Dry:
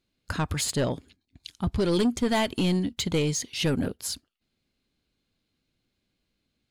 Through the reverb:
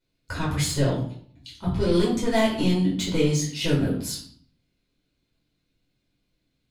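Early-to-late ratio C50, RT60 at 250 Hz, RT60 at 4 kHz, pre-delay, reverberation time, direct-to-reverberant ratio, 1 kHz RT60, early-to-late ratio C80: 5.0 dB, 0.65 s, 0.45 s, 6 ms, 0.55 s, −7.0 dB, 0.55 s, 9.0 dB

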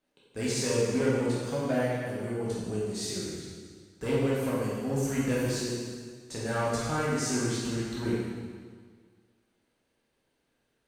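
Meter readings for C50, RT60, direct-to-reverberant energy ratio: −2.0 dB, 1.7 s, −7.5 dB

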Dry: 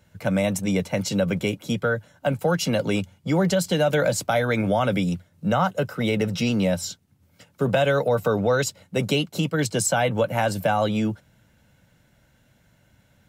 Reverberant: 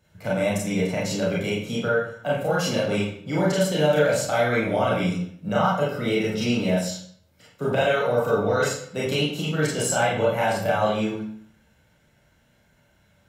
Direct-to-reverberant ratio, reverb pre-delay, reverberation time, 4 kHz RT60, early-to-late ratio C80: −7.0 dB, 28 ms, 0.60 s, 0.50 s, 5.5 dB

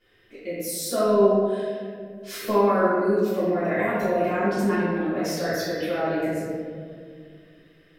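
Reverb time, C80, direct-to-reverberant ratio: 2.1 s, 0.0 dB, −16.5 dB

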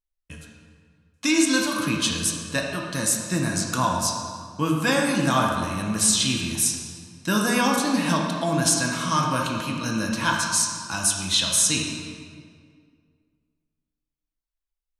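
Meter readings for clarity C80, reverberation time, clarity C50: 3.0 dB, 2.0 s, 1.5 dB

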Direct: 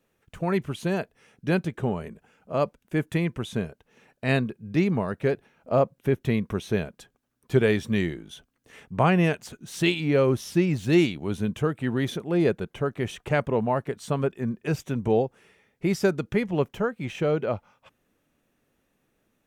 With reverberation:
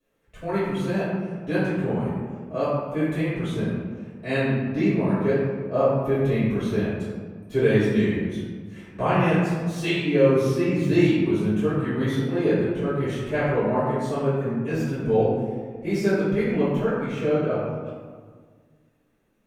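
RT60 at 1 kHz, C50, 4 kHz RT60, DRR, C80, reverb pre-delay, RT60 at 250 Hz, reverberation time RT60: 1.7 s, −1.5 dB, 0.85 s, −14.0 dB, 1.0 dB, 3 ms, 2.1 s, 1.7 s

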